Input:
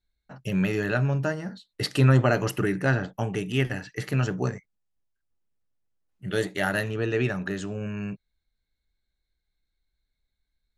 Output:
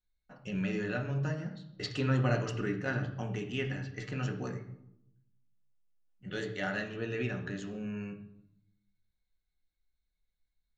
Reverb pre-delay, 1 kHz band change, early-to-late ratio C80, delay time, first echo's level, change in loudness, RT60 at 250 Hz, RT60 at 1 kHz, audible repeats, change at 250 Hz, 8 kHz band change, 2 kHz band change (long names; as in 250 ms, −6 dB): 4 ms, −9.0 dB, 12.0 dB, no echo audible, no echo audible, −9.0 dB, 1.1 s, 0.75 s, no echo audible, −7.5 dB, −11.0 dB, −8.5 dB